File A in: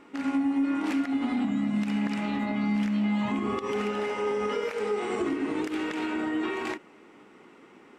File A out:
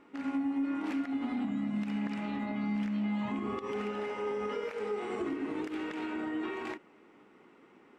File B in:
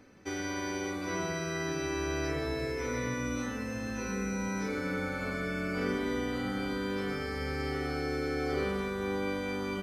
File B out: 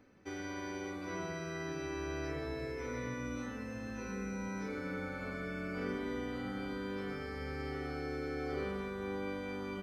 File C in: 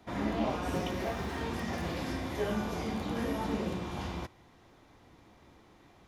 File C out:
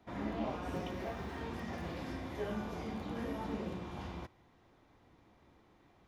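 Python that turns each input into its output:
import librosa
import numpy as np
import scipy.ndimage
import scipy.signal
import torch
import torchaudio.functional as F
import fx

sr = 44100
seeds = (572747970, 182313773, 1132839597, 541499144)

y = fx.peak_eq(x, sr, hz=9900.0, db=-6.5, octaves=2.2)
y = F.gain(torch.from_numpy(y), -6.0).numpy()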